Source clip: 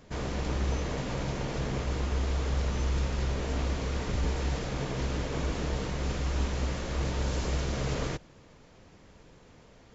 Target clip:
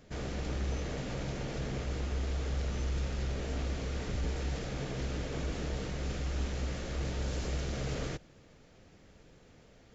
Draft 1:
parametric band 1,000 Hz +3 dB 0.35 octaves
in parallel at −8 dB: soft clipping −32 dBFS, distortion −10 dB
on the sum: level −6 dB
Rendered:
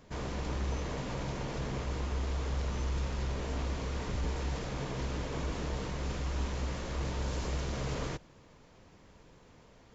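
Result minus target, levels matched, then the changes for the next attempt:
1,000 Hz band +4.0 dB
change: parametric band 1,000 Hz −7.5 dB 0.35 octaves

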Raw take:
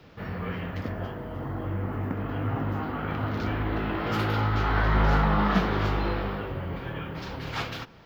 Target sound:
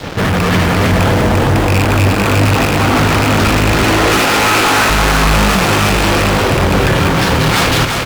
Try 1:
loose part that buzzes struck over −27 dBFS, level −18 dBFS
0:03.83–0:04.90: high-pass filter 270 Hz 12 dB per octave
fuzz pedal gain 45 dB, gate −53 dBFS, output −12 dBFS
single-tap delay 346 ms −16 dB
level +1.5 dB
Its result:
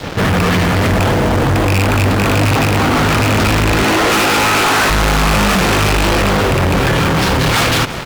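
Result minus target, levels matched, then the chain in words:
echo-to-direct −12 dB
loose part that buzzes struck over −27 dBFS, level −18 dBFS
0:03.83–0:04.90: high-pass filter 270 Hz 12 dB per octave
fuzz pedal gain 45 dB, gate −53 dBFS, output −12 dBFS
single-tap delay 346 ms −4 dB
level +1.5 dB

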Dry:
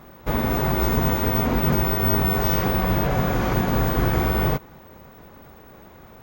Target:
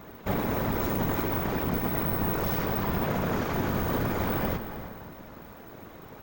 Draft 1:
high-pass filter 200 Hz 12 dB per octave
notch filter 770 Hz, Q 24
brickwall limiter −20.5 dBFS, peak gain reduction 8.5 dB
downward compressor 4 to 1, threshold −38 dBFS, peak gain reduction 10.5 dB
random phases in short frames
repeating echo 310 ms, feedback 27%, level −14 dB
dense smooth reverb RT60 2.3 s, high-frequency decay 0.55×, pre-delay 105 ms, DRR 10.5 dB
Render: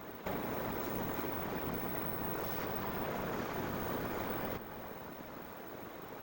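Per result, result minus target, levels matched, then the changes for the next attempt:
downward compressor: peak gain reduction +10.5 dB; 125 Hz band −3.5 dB
remove: downward compressor 4 to 1, threshold −38 dBFS, peak gain reduction 10.5 dB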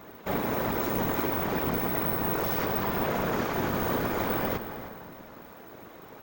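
125 Hz band −4.5 dB
change: high-pass filter 66 Hz 12 dB per octave

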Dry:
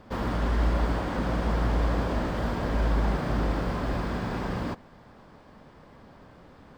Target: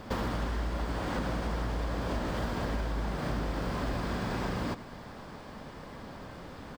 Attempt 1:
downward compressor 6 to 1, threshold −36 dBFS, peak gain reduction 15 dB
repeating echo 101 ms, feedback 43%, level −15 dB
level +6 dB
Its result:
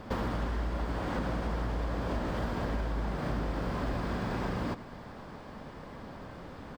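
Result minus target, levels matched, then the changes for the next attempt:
8,000 Hz band −5.0 dB
add after downward compressor: high-shelf EQ 3,200 Hz +6.5 dB

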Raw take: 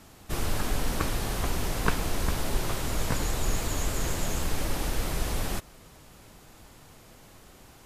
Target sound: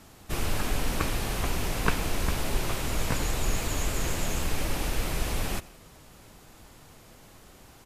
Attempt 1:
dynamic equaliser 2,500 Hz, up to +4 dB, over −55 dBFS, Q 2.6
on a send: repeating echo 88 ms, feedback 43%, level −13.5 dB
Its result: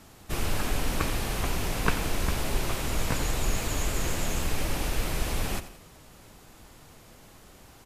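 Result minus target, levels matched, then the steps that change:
echo-to-direct +8 dB
change: repeating echo 88 ms, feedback 43%, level −21.5 dB

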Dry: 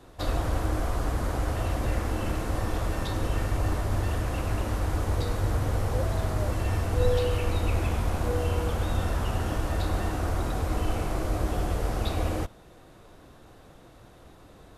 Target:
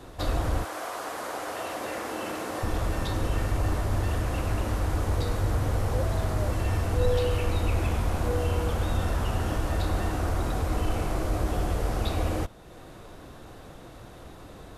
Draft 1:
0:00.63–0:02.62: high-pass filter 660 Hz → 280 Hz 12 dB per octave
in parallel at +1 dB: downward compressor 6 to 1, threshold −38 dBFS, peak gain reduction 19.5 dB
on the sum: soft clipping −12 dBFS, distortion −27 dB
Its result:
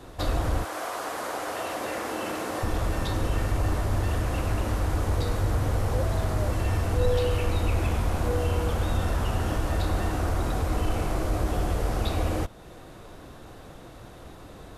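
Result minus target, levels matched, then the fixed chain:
downward compressor: peak gain reduction −7 dB
0:00.63–0:02.62: high-pass filter 660 Hz → 280 Hz 12 dB per octave
in parallel at +1 dB: downward compressor 6 to 1, threshold −46.5 dBFS, peak gain reduction 26.5 dB
on the sum: soft clipping −12 dBFS, distortion −28 dB

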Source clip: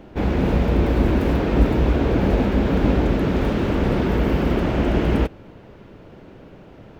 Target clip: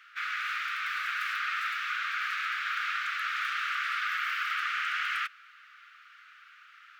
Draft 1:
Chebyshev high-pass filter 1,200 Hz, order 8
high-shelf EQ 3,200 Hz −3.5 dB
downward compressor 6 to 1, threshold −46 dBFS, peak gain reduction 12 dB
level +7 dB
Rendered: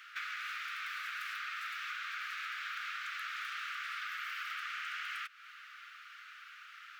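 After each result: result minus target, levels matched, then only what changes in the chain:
downward compressor: peak gain reduction +12 dB; 8,000 Hz band +4.5 dB
remove: downward compressor 6 to 1, threshold −46 dBFS, peak gain reduction 12 dB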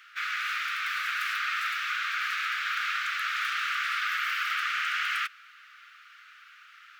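8,000 Hz band +4.0 dB
change: high-shelf EQ 3,200 Hz −11 dB

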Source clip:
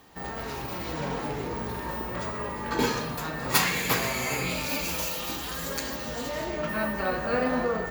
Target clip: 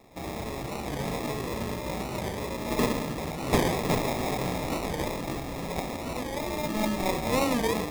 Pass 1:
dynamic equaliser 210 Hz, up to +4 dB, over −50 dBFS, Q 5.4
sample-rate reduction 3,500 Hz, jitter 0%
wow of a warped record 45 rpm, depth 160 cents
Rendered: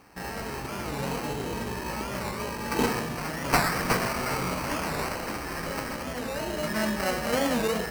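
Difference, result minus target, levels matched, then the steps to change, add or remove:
sample-rate reduction: distortion −6 dB
change: sample-rate reduction 1,500 Hz, jitter 0%

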